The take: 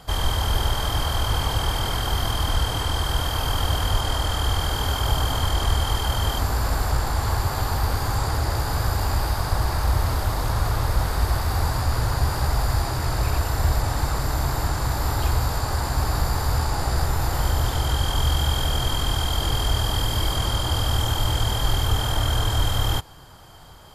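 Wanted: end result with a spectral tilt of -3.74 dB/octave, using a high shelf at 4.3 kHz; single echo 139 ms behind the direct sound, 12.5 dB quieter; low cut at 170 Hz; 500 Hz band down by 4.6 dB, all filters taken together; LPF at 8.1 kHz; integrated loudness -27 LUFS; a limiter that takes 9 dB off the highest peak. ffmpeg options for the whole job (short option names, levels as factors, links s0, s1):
-af "highpass=170,lowpass=8100,equalizer=f=500:t=o:g=-6,highshelf=f=4300:g=-7,alimiter=level_in=1.12:limit=0.0631:level=0:latency=1,volume=0.891,aecho=1:1:139:0.237,volume=2.11"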